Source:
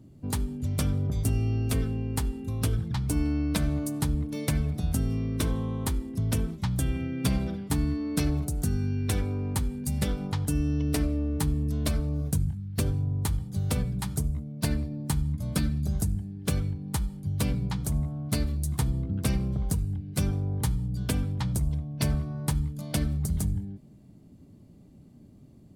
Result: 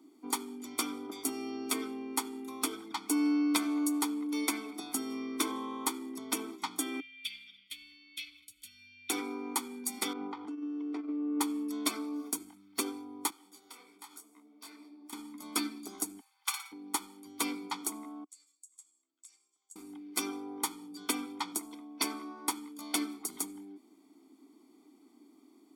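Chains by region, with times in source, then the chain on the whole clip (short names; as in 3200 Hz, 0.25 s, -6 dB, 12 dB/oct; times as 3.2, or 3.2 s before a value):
7–9.1 Chebyshev band-stop 110–2900 Hz, order 3 + resonant high shelf 4200 Hz -13.5 dB, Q 1.5
10.13–11.41 negative-ratio compressor -29 dBFS, ratio -0.5 + tape spacing loss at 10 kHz 36 dB
13.3–15.13 HPF 530 Hz 6 dB/oct + compressor, threshold -43 dBFS + detuned doubles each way 48 cents
16.2–16.72 brick-wall FIR high-pass 770 Hz + flutter echo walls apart 10.1 m, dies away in 0.41 s
18.24–19.76 band-pass 7500 Hz, Q 11 + compressor 4:1, threshold -51 dBFS
whole clip: elliptic high-pass 290 Hz, stop band 50 dB; comb 0.9 ms, depth 96%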